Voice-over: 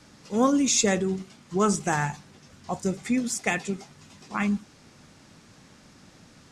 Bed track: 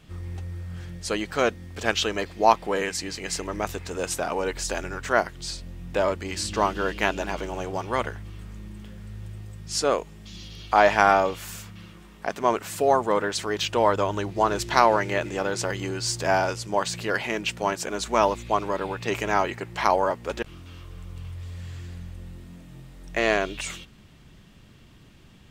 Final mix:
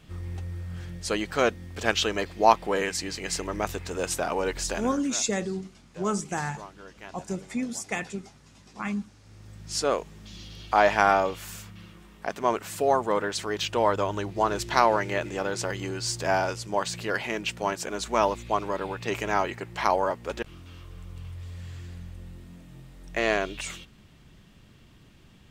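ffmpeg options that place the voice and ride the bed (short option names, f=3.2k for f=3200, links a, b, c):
-filter_complex "[0:a]adelay=4450,volume=-5dB[a];[1:a]volume=17.5dB,afade=t=out:st=4.65:d=0.45:silence=0.1,afade=t=in:st=9.23:d=0.48:silence=0.125893[b];[a][b]amix=inputs=2:normalize=0"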